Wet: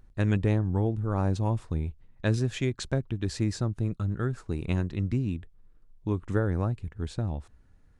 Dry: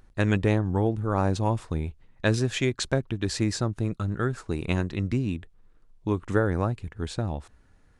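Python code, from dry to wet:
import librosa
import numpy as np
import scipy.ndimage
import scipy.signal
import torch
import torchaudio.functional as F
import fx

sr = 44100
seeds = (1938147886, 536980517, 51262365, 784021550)

y = fx.low_shelf(x, sr, hz=270.0, db=8.0)
y = y * 10.0 ** (-7.0 / 20.0)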